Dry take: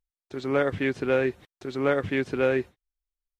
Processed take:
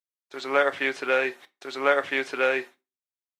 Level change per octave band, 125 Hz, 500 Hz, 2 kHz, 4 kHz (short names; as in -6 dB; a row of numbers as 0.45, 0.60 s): under -20 dB, -0.5 dB, +6.0 dB, +6.5 dB